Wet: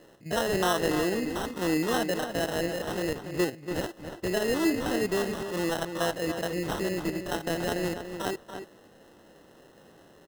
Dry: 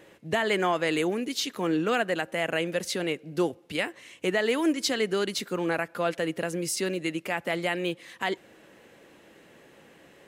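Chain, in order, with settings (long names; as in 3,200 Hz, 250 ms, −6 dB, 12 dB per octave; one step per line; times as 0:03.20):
spectrum averaged block by block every 50 ms
decimation without filtering 19×
slap from a distant wall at 49 metres, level −8 dB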